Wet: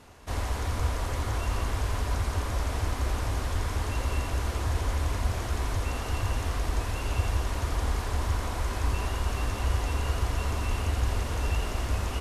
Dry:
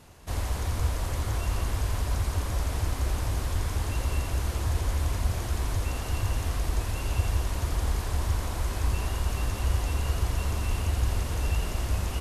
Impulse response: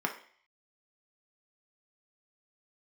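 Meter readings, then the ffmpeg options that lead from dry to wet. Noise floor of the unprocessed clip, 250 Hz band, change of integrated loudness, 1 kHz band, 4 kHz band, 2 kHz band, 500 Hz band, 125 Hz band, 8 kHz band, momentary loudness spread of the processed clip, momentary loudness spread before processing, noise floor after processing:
-33 dBFS, +0.5 dB, -0.5 dB, +3.0 dB, +0.5 dB, +2.0 dB, +2.0 dB, -1.0 dB, -2.0 dB, 2 LU, 2 LU, -34 dBFS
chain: -filter_complex "[0:a]highshelf=f=11k:g=-10.5,asplit=2[a][b];[1:a]atrim=start_sample=2205[c];[b][c]afir=irnorm=-1:irlink=0,volume=-14.5dB[d];[a][d]amix=inputs=2:normalize=0"

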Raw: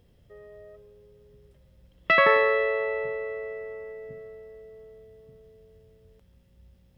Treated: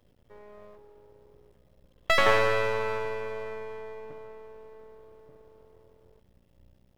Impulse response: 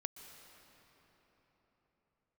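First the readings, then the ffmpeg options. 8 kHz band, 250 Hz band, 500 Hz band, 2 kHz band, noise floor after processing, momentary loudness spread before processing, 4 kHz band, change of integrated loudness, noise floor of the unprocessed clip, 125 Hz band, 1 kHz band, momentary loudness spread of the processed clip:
n/a, +1.5 dB, -3.0 dB, -4.0 dB, -64 dBFS, 22 LU, +3.5 dB, -3.5 dB, -60 dBFS, +7.0 dB, -2.0 dB, 22 LU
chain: -filter_complex "[0:a]aeval=exprs='max(val(0),0)':c=same,asplit=2[a][b];[b]highpass=220,lowpass=2.1k[c];[1:a]atrim=start_sample=2205[d];[c][d]afir=irnorm=-1:irlink=0,volume=-6.5dB[e];[a][e]amix=inputs=2:normalize=0"

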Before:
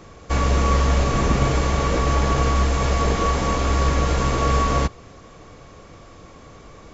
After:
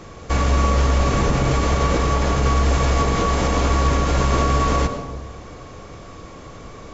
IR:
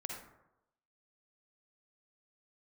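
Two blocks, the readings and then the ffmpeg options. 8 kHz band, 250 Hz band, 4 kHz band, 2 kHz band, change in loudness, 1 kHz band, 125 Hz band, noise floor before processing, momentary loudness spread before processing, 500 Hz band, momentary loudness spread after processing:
n/a, +1.5 dB, +1.0 dB, +1.0 dB, +1.5 dB, +1.0 dB, +1.5 dB, -45 dBFS, 2 LU, +1.5 dB, 21 LU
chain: -filter_complex "[0:a]alimiter=limit=-14.5dB:level=0:latency=1:release=98,asplit=2[a][b];[1:a]atrim=start_sample=2205,asetrate=24696,aresample=44100[c];[b][c]afir=irnorm=-1:irlink=0,volume=-2.5dB[d];[a][d]amix=inputs=2:normalize=0"

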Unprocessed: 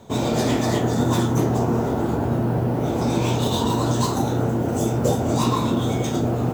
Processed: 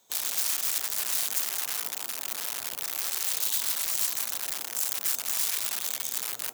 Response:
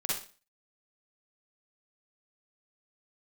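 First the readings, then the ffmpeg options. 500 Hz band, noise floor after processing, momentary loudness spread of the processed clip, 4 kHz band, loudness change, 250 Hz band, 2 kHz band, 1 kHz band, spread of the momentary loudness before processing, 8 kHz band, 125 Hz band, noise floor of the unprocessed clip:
-27.0 dB, -39 dBFS, 5 LU, -1.0 dB, -5.5 dB, -37.0 dB, -3.5 dB, -18.0 dB, 2 LU, +5.5 dB, under -40 dB, -24 dBFS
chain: -af "aeval=exprs='(mod(6.68*val(0)+1,2)-1)/6.68':c=same,aderivative,volume=-3dB"

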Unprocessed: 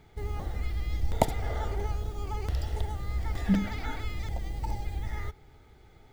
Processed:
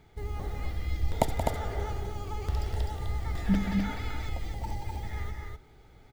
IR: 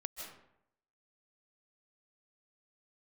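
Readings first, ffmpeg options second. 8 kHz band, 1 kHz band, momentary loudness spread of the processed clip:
0.0 dB, +0.5 dB, 9 LU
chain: -af "aecho=1:1:177.8|253.6:0.355|0.631,volume=-1.5dB"

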